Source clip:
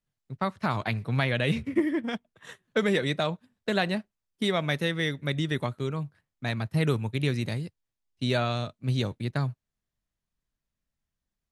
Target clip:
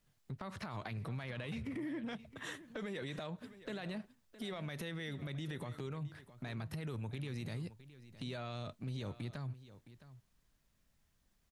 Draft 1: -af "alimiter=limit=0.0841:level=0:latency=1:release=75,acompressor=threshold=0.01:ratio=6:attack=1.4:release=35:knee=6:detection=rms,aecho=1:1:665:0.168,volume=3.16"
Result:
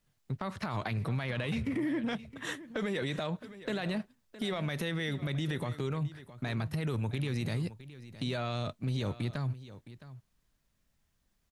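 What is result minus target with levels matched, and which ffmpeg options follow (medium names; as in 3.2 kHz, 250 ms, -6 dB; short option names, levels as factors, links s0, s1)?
compression: peak gain reduction -8.5 dB
-af "alimiter=limit=0.0841:level=0:latency=1:release=75,acompressor=threshold=0.00299:ratio=6:attack=1.4:release=35:knee=6:detection=rms,aecho=1:1:665:0.168,volume=3.16"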